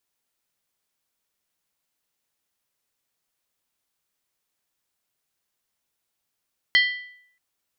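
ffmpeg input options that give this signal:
ffmpeg -f lavfi -i "aevalsrc='0.224*pow(10,-3*t/0.67)*sin(2*PI*1980*t)+0.126*pow(10,-3*t/0.531)*sin(2*PI*3156.1*t)+0.0708*pow(10,-3*t/0.458)*sin(2*PI*4229.3*t)+0.0398*pow(10,-3*t/0.442)*sin(2*PI*4546.1*t)+0.0224*pow(10,-3*t/0.411)*sin(2*PI*5252.9*t)':duration=0.63:sample_rate=44100" out.wav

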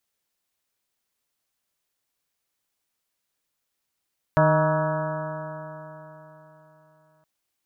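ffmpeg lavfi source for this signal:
ffmpeg -f lavfi -i "aevalsrc='0.112*pow(10,-3*t/3.71)*sin(2*PI*154.14*t)+0.0398*pow(10,-3*t/3.71)*sin(2*PI*309.11*t)+0.02*pow(10,-3*t/3.71)*sin(2*PI*465.73*t)+0.133*pow(10,-3*t/3.71)*sin(2*PI*624.81*t)+0.0211*pow(10,-3*t/3.71)*sin(2*PI*787.13*t)+0.075*pow(10,-3*t/3.71)*sin(2*PI*953.47*t)+0.0398*pow(10,-3*t/3.71)*sin(2*PI*1124.54*t)+0.0398*pow(10,-3*t/3.71)*sin(2*PI*1301.03*t)+0.0299*pow(10,-3*t/3.71)*sin(2*PI*1483.6*t)+0.0299*pow(10,-3*t/3.71)*sin(2*PI*1672.87*t)':duration=2.87:sample_rate=44100" out.wav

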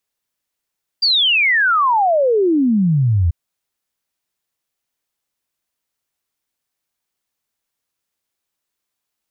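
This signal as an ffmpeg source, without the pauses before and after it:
ffmpeg -f lavfi -i "aevalsrc='0.266*clip(min(t,2.29-t)/0.01,0,1)*sin(2*PI*4800*2.29/log(79/4800)*(exp(log(79/4800)*t/2.29)-1))':duration=2.29:sample_rate=44100" out.wav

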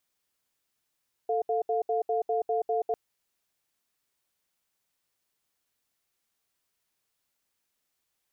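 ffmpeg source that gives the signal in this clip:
ffmpeg -f lavfi -i "aevalsrc='0.0447*(sin(2*PI*444*t)+sin(2*PI*705*t))*clip(min(mod(t,0.2),0.13-mod(t,0.2))/0.005,0,1)':duration=1.65:sample_rate=44100" out.wav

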